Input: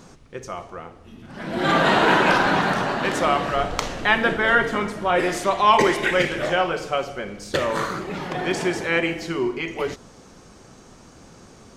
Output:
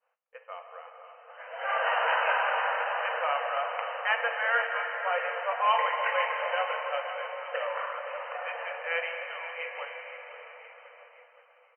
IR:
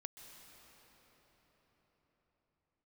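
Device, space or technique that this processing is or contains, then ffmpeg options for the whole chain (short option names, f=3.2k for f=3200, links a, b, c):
cathedral: -filter_complex "[1:a]atrim=start_sample=2205[a];[0:a][a]afir=irnorm=-1:irlink=0,afftfilt=real='re*between(b*sr/4096,460,3100)':imag='im*between(b*sr/4096,460,3100)':win_size=4096:overlap=0.75,lowshelf=f=500:g=-5,aecho=1:1:518|1036|1554|2072|2590:0.237|0.119|0.0593|0.0296|0.0148,agate=range=-33dB:threshold=-49dB:ratio=3:detection=peak,volume=-2dB"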